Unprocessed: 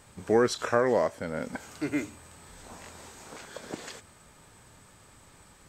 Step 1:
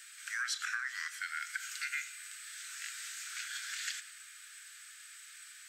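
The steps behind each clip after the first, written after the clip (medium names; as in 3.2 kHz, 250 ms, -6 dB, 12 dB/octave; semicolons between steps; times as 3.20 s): steep high-pass 1.4 kHz 72 dB/octave; compression 5:1, threshold -41 dBFS, peak gain reduction 11 dB; on a send at -11.5 dB: reverberation RT60 1.9 s, pre-delay 7 ms; on the sum: trim +7 dB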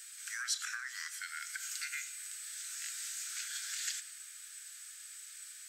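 tone controls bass +15 dB, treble +10 dB; trim -5 dB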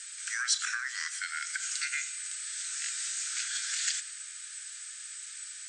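steep low-pass 9.4 kHz 96 dB/octave; trim +7 dB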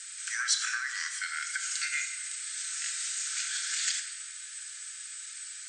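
simulated room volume 1700 m³, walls mixed, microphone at 1.1 m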